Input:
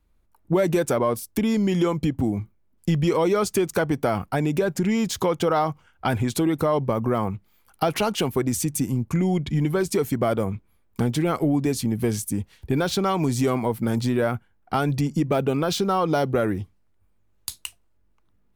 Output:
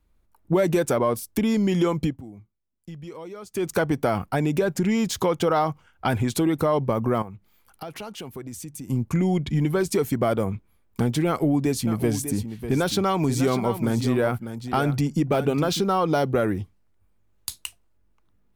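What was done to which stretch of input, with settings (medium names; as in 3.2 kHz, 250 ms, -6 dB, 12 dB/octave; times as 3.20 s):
2.04–3.68 s: dip -17.5 dB, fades 0.17 s
7.22–8.90 s: compression 2:1, threshold -44 dBFS
11.27–15.80 s: delay 598 ms -10.5 dB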